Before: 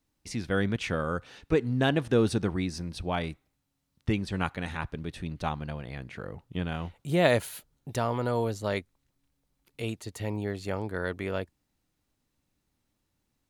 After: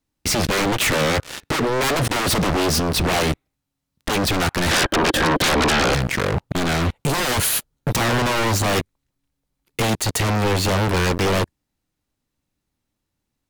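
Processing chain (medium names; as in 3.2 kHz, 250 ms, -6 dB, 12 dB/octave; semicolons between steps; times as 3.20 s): 1.38–2.60 s: bass shelf 61 Hz -9.5 dB; waveshaping leveller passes 5; peak limiter -12.5 dBFS, peak gain reduction 4 dB; 4.71–5.95 s: small resonant body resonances 330/540/1600/3100 Hz, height 16 dB, ringing for 30 ms; sine folder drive 7 dB, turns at -12.5 dBFS; trim -2 dB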